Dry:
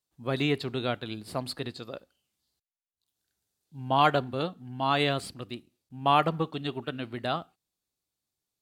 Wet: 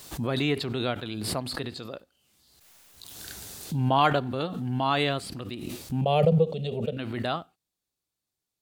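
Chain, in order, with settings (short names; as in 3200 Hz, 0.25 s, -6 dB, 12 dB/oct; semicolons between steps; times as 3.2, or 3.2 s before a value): 6.01–6.97 EQ curve 130 Hz 0 dB, 200 Hz +9 dB, 290 Hz -18 dB, 500 Hz +12 dB, 990 Hz -17 dB, 1600 Hz -20 dB, 2400 Hz -6 dB, 8100 Hz -5 dB, 13000 Hz -10 dB; backwards sustainer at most 28 dB/s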